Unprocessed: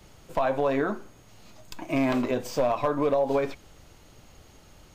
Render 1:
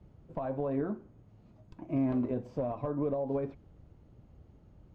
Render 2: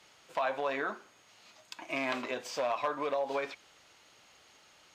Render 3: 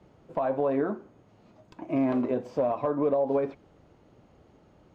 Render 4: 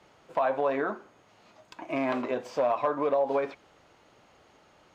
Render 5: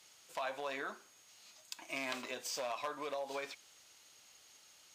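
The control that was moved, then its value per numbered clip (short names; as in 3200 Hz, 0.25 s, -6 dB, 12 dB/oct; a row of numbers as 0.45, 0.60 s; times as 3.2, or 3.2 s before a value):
band-pass, frequency: 100, 2700, 320, 1000, 6800 Hz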